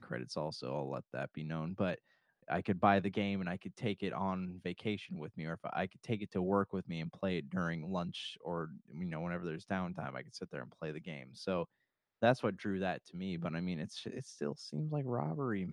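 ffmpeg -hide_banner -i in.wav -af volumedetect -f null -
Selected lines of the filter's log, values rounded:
mean_volume: -38.1 dB
max_volume: -14.7 dB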